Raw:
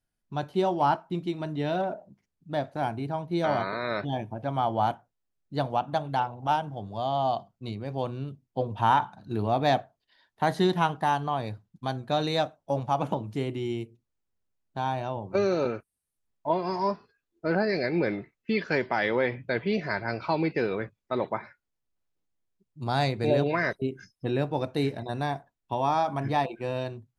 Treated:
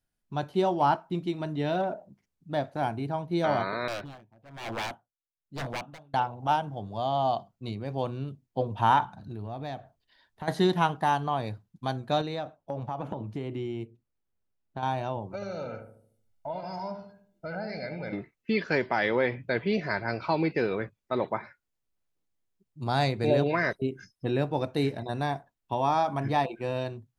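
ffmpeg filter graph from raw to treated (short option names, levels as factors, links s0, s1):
-filter_complex "[0:a]asettb=1/sr,asplit=3[s0][s1][s2];[s0]atrim=end=3.884[s3];[s1]atrim=start=3.88:end=6.14,asetpts=PTS-STARTPTS,afade=t=in:d=0.004:c=qsin,afade=t=out:st=2.256:d=0.004:c=qsin,aeval=exprs='0.0473*(abs(mod(val(0)/0.0473+3,4)-2)-1)':c=same,aeval=exprs='val(0)*pow(10,-23*(0.5-0.5*cos(2*PI*1.1*n/s))/20)':c=same[s4];[s2]atrim=start=6.136[s5];[s3][s4]acrossfade=d=0.004:c1=hsin:c2=qsin[s6];[s6][s5]acrossfade=d=0.004:c1=qsin:c2=hsin,asettb=1/sr,asplit=3[s7][s8][s9];[s7]atrim=end=9.054[s10];[s8]atrim=start=9.05:end=10.48,asetpts=PTS-STARTPTS,afade=t=in:d=0.004:c=qsin,afade=t=out:st=1.426:d=0.004:c=qsin,lowshelf=f=120:g=12,acompressor=threshold=0.0126:ratio=3:attack=3.2:release=140:knee=1:detection=peak[s11];[s9]atrim=start=10.476[s12];[s10][s11]acrossfade=d=0.004:c1=hsin:c2=qsin[s13];[s13][s12]acrossfade=d=0.004:c1=qsin:c2=hsin,asettb=1/sr,asplit=3[s14][s15][s16];[s14]atrim=end=12.214[s17];[s15]atrim=start=12.21:end=14.83,asetpts=PTS-STARTPTS,afade=t=in:d=0.004:c=qsin,afade=t=out:st=2.616:d=0.004:c=qsin,highshelf=f=4300:g=-12,acompressor=threshold=0.0355:ratio=6:attack=3.2:release=140:knee=1:detection=peak[s18];[s16]atrim=start=14.826[s19];[s17][s18]acrossfade=d=0.004:c1=hsin:c2=qsin[s20];[s20][s19]acrossfade=d=0.004:c1=qsin:c2=hsin,asettb=1/sr,asplit=3[s21][s22][s23];[s21]atrim=end=15.344[s24];[s22]atrim=start=15.34:end=18.13,asetpts=PTS-STARTPTS,afade=t=in:d=0.004:c=qsin,afade=t=out:st=2.786:d=0.004:c=qsin,acompressor=threshold=0.0126:ratio=2.5:attack=3.2:release=140:knee=1:detection=peak,aecho=1:1:1.4:0.7,atrim=end_sample=123039,asplit=2[s25][s26];[s26]adelay=75,lowpass=f=890:p=1,volume=0.562,asplit=2[s27][s28];[s28]adelay=75,lowpass=f=890:p=1,volume=0.52,asplit=2[s29][s30];[s30]adelay=75,lowpass=f=890:p=1,volume=0.52,asplit=2[s31][s32];[s32]adelay=75,lowpass=f=890:p=1,volume=0.52,asplit=2[s33][s34];[s34]adelay=75,lowpass=f=890:p=1,volume=0.52,asplit=2[s35][s36];[s36]adelay=75,lowpass=f=890:p=1,volume=0.52,asplit=2[s37][s38];[s38]adelay=75,lowpass=f=890:p=1,volume=0.52[s39];[s25][s27][s29][s31][s33][s35][s37][s39]amix=inputs=8:normalize=0,atrim=end_sample=123039[s40];[s23]atrim=start=18.126[s41];[s24][s40]acrossfade=d=0.004:c1=hsin:c2=qsin[s42];[s42][s41]acrossfade=d=0.004:c1=qsin:c2=hsin"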